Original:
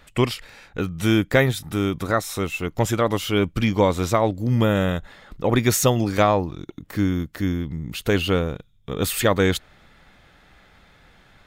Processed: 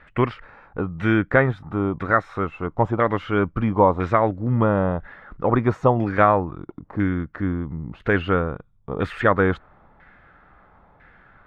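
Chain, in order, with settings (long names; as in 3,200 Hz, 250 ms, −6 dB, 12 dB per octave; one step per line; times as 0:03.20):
auto-filter low-pass saw down 1 Hz 900–1,800 Hz
level −1 dB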